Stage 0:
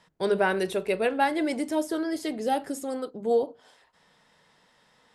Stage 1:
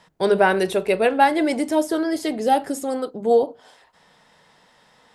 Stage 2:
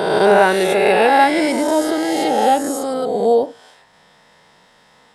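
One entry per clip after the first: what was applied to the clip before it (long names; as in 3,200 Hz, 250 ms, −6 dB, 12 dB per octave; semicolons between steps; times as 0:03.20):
parametric band 760 Hz +3 dB 0.7 octaves; level +6 dB
peak hold with a rise ahead of every peak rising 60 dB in 1.81 s; level +1 dB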